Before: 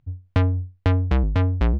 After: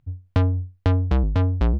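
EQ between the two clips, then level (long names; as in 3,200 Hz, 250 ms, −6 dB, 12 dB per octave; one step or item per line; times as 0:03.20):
dynamic equaliser 2,100 Hz, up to −6 dB, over −46 dBFS, Q 1.5
0.0 dB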